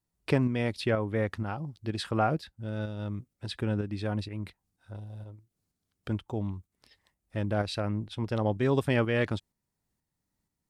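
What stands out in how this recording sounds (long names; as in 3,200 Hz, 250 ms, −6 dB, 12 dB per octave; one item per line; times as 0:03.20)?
tremolo saw up 2.1 Hz, depth 45%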